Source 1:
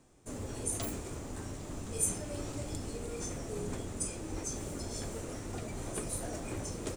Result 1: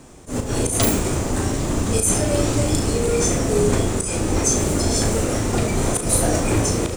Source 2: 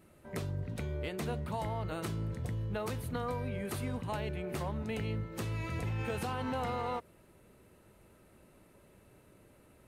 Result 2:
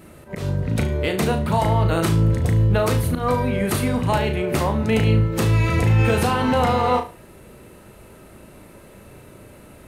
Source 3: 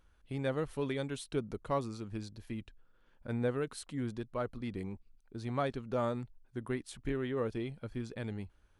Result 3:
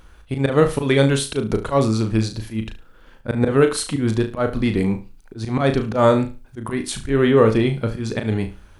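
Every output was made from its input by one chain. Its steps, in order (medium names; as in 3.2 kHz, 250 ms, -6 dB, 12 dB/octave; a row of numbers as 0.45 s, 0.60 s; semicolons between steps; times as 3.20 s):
slow attack 126 ms; flutter echo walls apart 6.2 m, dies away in 0.3 s; normalise loudness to -20 LUFS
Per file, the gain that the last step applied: +19.0 dB, +15.5 dB, +20.0 dB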